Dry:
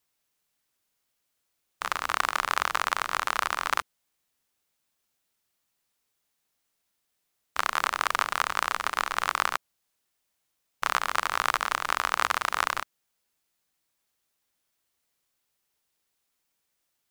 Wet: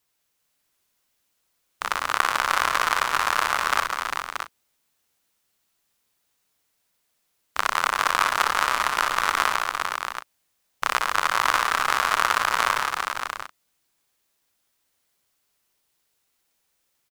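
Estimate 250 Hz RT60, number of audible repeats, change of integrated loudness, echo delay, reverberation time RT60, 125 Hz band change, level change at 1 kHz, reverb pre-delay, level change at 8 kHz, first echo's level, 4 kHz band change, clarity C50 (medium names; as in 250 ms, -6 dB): no reverb, 5, +4.5 dB, 60 ms, no reverb, +5.5 dB, +5.5 dB, no reverb, +5.5 dB, -7.0 dB, +5.5 dB, no reverb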